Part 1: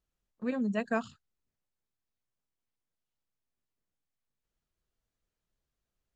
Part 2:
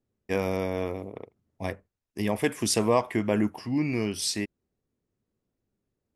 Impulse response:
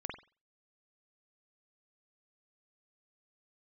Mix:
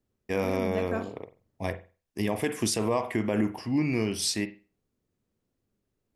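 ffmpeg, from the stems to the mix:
-filter_complex "[0:a]volume=-7dB,asplit=2[a][b];[b]volume=-3.5dB[c];[1:a]volume=-1.5dB,asplit=2[d][e];[e]volume=-7dB[f];[2:a]atrim=start_sample=2205[g];[c][f]amix=inputs=2:normalize=0[h];[h][g]afir=irnorm=-1:irlink=0[i];[a][d][i]amix=inputs=3:normalize=0,alimiter=limit=-15.5dB:level=0:latency=1:release=75"

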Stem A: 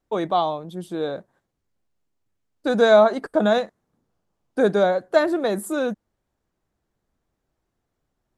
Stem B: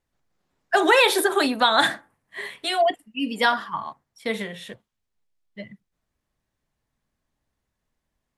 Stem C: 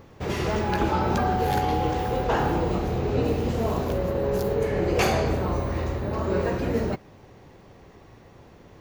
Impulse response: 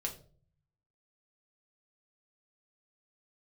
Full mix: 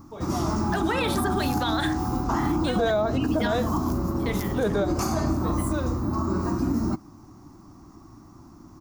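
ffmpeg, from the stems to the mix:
-filter_complex "[0:a]bandreject=f=380:w=12,volume=-3.5dB,asplit=2[a][b];[b]volume=-11.5dB[c];[1:a]volume=-5dB,asplit=2[d][e];[2:a]firequalizer=gain_entry='entry(160,0);entry(310,9);entry(460,-21);entry(680,-6);entry(1200,5);entry(1700,-13);entry(3200,-16);entry(5200,4)':delay=0.05:min_phase=1,volume=1dB[f];[e]apad=whole_len=369544[g];[a][g]sidechaingate=range=-33dB:threshold=-54dB:ratio=16:detection=peak[h];[3:a]atrim=start_sample=2205[i];[c][i]afir=irnorm=-1:irlink=0[j];[h][d][f][j]amix=inputs=4:normalize=0,alimiter=limit=-15.5dB:level=0:latency=1:release=90"

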